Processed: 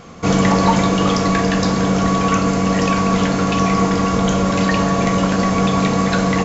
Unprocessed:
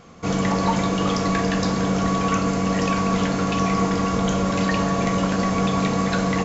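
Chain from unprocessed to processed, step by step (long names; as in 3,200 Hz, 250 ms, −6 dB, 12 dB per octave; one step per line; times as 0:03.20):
speech leveller 2 s
level +5 dB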